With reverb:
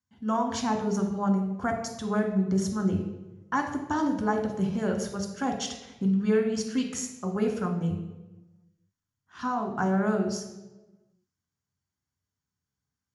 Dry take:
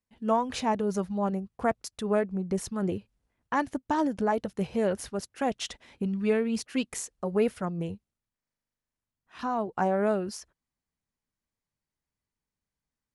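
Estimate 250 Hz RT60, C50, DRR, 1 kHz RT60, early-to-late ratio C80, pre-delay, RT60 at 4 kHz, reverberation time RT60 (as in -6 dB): 1.4 s, 7.5 dB, 3.5 dB, 1.0 s, 9.5 dB, 3 ms, 0.75 s, 1.1 s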